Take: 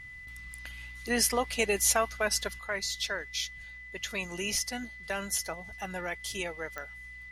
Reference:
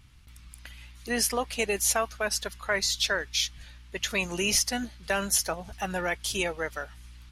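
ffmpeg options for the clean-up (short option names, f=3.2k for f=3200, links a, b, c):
-af "adeclick=t=4,bandreject=f=2k:w=30,asetnsamples=n=441:p=0,asendcmd='2.59 volume volume 6.5dB',volume=0dB"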